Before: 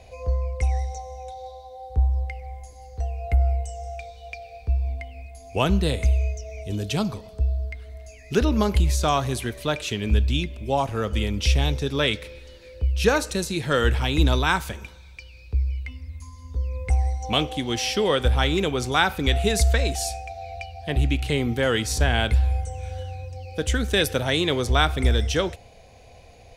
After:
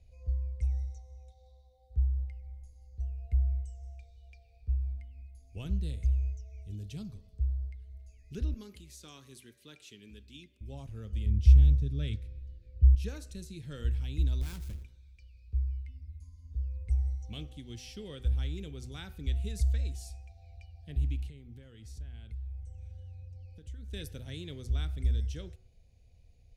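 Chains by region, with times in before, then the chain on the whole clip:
8.54–10.61 s: high-pass 320 Hz + peaking EQ 650 Hz -12.5 dB 0.4 oct + tape noise reduction on one side only decoder only
11.26–12.95 s: Butterworth band-stop 990 Hz, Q 3.6 + peaking EQ 84 Hz +11.5 dB 2.6 oct + tape noise reduction on one side only decoder only
14.41–14.83 s: square wave that keeps the level + compression 2:1, threshold -23 dBFS
21.28–23.93 s: treble shelf 5.2 kHz -5 dB + compression 4:1, threshold -31 dBFS
whole clip: amplifier tone stack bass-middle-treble 10-0-1; de-hum 125 Hz, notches 16

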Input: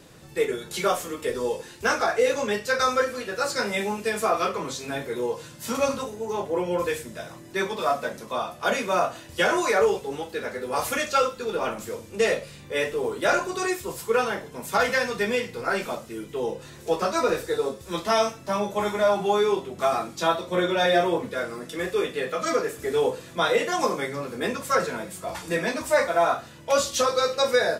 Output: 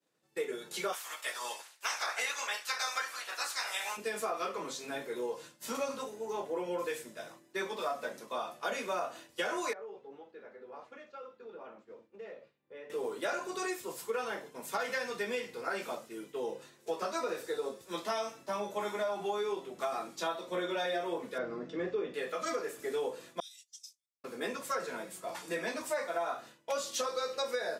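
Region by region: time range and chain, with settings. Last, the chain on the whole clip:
0.92–3.96 s: spectral peaks clipped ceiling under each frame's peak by 19 dB + Chebyshev high-pass 910 Hz + phaser 1.2 Hz, delay 1.7 ms, feedback 23%
9.73–12.90 s: compression 3:1, threshold -37 dBFS + tape spacing loss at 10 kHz 34 dB + hum notches 50/100/150/200/250/300/350 Hz
21.38–22.14 s: low-pass 6.1 kHz 24 dB/octave + tilt EQ -3.5 dB/octave
23.40–24.24 s: gate -26 dBFS, range -11 dB + inverse Chebyshev high-pass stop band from 820 Hz, stop band 80 dB + treble shelf 11 kHz -8.5 dB
whole clip: high-pass 250 Hz 12 dB/octave; expander -39 dBFS; compression, threshold -23 dBFS; trim -7.5 dB

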